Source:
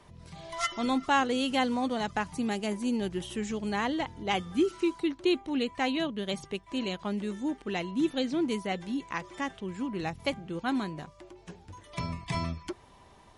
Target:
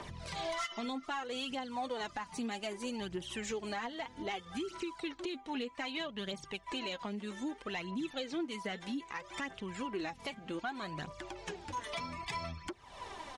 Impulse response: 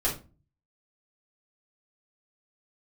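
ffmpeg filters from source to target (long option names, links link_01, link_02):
-filter_complex "[0:a]aresample=22050,aresample=44100,aphaser=in_gain=1:out_gain=1:delay=4.8:decay=0.56:speed=0.63:type=triangular,acompressor=threshold=-44dB:ratio=4,asplit=2[link_01][link_02];[link_02]highpass=frequency=720:poles=1,volume=9dB,asoftclip=type=tanh:threshold=-29dB[link_03];[link_01][link_03]amix=inputs=2:normalize=0,lowpass=frequency=6300:poles=1,volume=-6dB,alimiter=level_in=11.5dB:limit=-24dB:level=0:latency=1:release=231,volume=-11.5dB,volume=6.5dB"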